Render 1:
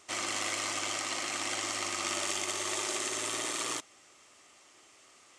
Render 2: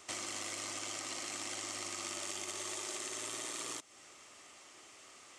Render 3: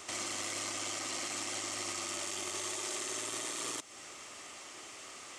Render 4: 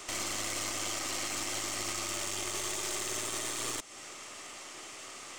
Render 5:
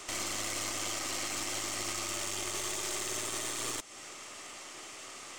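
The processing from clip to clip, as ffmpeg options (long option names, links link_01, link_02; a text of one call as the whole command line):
ffmpeg -i in.wav -filter_complex "[0:a]acrossover=split=540|4300[link_01][link_02][link_03];[link_01]acompressor=threshold=-54dB:ratio=4[link_04];[link_02]acompressor=threshold=-50dB:ratio=4[link_05];[link_03]acompressor=threshold=-45dB:ratio=4[link_06];[link_04][link_05][link_06]amix=inputs=3:normalize=0,volume=2.5dB" out.wav
ffmpeg -i in.wav -af "alimiter=level_in=12.5dB:limit=-24dB:level=0:latency=1:release=20,volume=-12.5dB,volume=8dB" out.wav
ffmpeg -i in.wav -af "aeval=exprs='(tanh(44.7*val(0)+0.7)-tanh(0.7))/44.7':channel_layout=same,volume=6.5dB" out.wav
ffmpeg -i in.wav -ar 48000 -c:a libmp3lame -b:a 128k out.mp3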